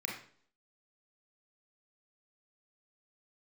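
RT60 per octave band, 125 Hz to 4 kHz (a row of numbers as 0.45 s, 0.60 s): 0.55 s, 0.60 s, 0.60 s, 0.50 s, 0.45 s, 0.50 s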